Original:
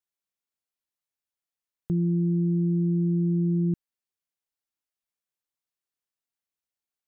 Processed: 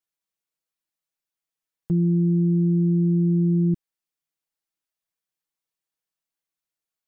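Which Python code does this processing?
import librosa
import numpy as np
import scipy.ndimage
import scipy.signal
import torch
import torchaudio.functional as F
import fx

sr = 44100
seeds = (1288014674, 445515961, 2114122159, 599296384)

y = x + 0.65 * np.pad(x, (int(6.2 * sr / 1000.0), 0))[:len(x)]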